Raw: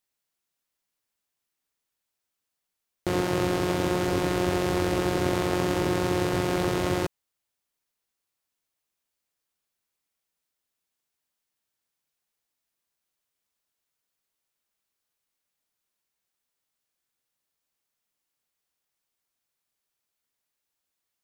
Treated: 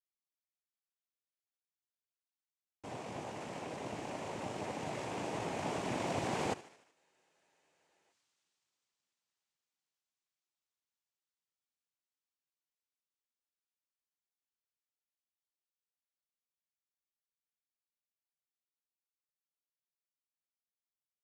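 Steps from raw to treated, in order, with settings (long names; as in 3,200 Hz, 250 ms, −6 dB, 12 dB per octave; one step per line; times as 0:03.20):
source passing by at 0:07.88, 26 m/s, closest 5.6 metres
feedback echo with a high-pass in the loop 75 ms, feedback 62%, high-pass 250 Hz, level −17.5 dB
cochlear-implant simulation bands 4
frozen spectrum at 0:06.96, 1.15 s
level +9 dB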